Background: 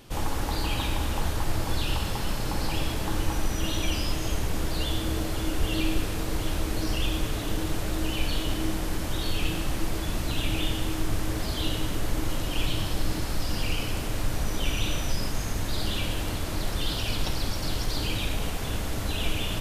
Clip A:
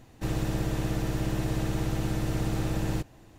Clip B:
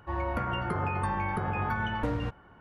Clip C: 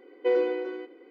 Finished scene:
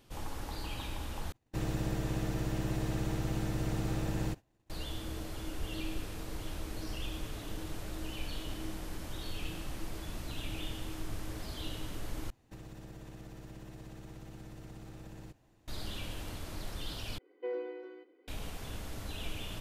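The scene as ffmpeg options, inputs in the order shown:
-filter_complex "[1:a]asplit=2[a][b];[0:a]volume=-12dB[c];[a]agate=range=-33dB:threshold=-43dB:ratio=3:release=100:detection=peak[d];[b]acompressor=threshold=-36dB:ratio=6:attack=67:release=51:knee=1:detection=rms[e];[3:a]acrossover=split=2800[f][g];[g]acompressor=threshold=-56dB:ratio=4:attack=1:release=60[h];[f][h]amix=inputs=2:normalize=0[i];[c]asplit=4[j][k][l][m];[j]atrim=end=1.324[n];[d]atrim=end=3.38,asetpts=PTS-STARTPTS,volume=-5dB[o];[k]atrim=start=4.696:end=12.304[p];[e]atrim=end=3.38,asetpts=PTS-STARTPTS,volume=-13.5dB[q];[l]atrim=start=15.676:end=17.184[r];[i]atrim=end=1.1,asetpts=PTS-STARTPTS,volume=-13.5dB[s];[m]atrim=start=18.276[t];[n][o]acrossfade=d=0.004:c1=hsin:c2=hsin[u];[u][p]acrossfade=d=0.004:c1=hsin:c2=hsin[v];[v][q]acrossfade=d=0.004:c1=hsin:c2=hsin[w];[w][r]acrossfade=d=0.004:c1=hsin:c2=hsin[x];[x][s]acrossfade=d=0.004:c1=hsin:c2=hsin[y];[y][t]acrossfade=d=0.004:c1=hsin:c2=hsin"

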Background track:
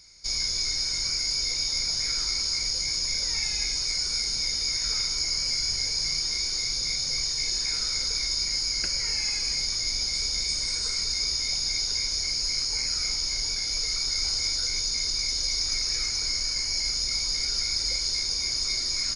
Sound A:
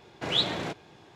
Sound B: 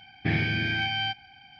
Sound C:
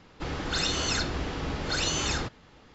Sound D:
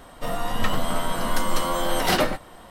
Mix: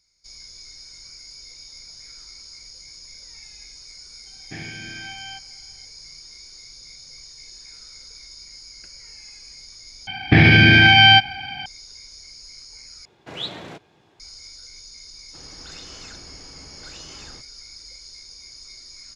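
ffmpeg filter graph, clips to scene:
-filter_complex "[2:a]asplit=2[a][b];[0:a]volume=-15dB[c];[a]highpass=f=160:p=1[d];[b]alimiter=level_in=21dB:limit=-1dB:release=50:level=0:latency=1[e];[c]asplit=3[f][g][h];[f]atrim=end=10.074[i];[e]atrim=end=1.59,asetpts=PTS-STARTPTS,volume=-1.5dB[j];[g]atrim=start=11.656:end=13.054[k];[1:a]atrim=end=1.15,asetpts=PTS-STARTPTS,volume=-5dB[l];[h]atrim=start=14.196[m];[d]atrim=end=1.59,asetpts=PTS-STARTPTS,volume=-8.5dB,afade=t=in:d=0.004:c=hsin,afade=t=out:st=1.586:d=0.004:c=hsin,adelay=4260[n];[3:a]atrim=end=2.74,asetpts=PTS-STARTPTS,volume=-14.5dB,afade=t=in:d=0.004:c=hsin,afade=t=out:st=2.736:d=0.004:c=hsin,adelay=15130[o];[i][j]acrossfade=d=0.004:c1=hsin:c2=hsin[p];[p][k]acrossfade=d=0.004:c1=hsin:c2=hsin[q];[q][l]acrossfade=d=0.004:c1=hsin:c2=hsin[r];[r][m]acrossfade=d=0.004:c1=hsin:c2=hsin[s];[s][n][o]amix=inputs=3:normalize=0"

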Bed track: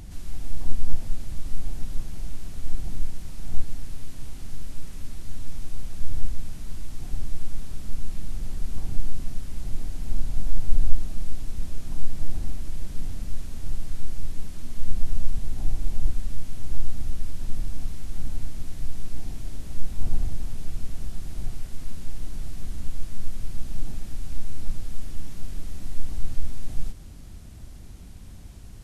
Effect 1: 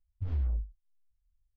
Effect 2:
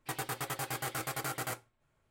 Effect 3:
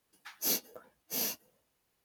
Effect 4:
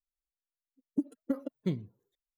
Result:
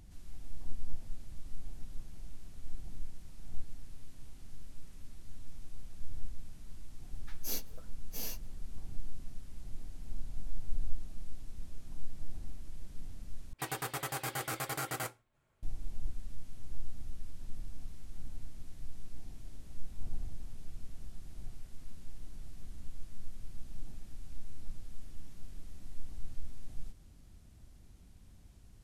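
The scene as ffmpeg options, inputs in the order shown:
-filter_complex "[0:a]volume=-14dB,asplit=2[a][b];[a]atrim=end=13.534[c];[2:a]atrim=end=2.1,asetpts=PTS-STARTPTS,volume=-0.5dB[d];[b]atrim=start=15.626[e];[3:a]atrim=end=2.04,asetpts=PTS-STARTPTS,volume=-8dB,afade=t=in:d=0.004:c=hsin,afade=t=out:st=2.036:d=0.004:c=hsin,adelay=7020[f];[c][d]acrossfade=d=0.004:c1=hsin:c2=hsin[g];[g][e]acrossfade=d=0.004:c1=hsin:c2=hsin[h];[h][f]amix=inputs=2:normalize=0"

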